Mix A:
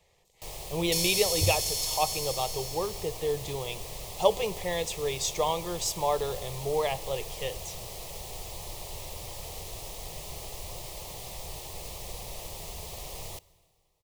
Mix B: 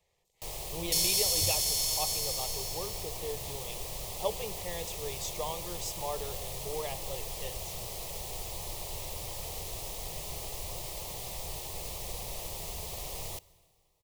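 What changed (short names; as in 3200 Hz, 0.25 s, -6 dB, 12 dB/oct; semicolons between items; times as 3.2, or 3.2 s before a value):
speech -9.5 dB; master: add high shelf 9000 Hz +3.5 dB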